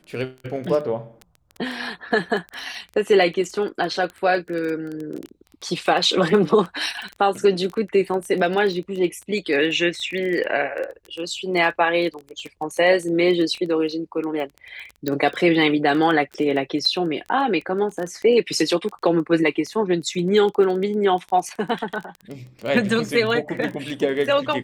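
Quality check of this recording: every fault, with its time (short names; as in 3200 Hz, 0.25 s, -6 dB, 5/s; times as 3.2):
crackle 14/s -26 dBFS
15.08 pop -10 dBFS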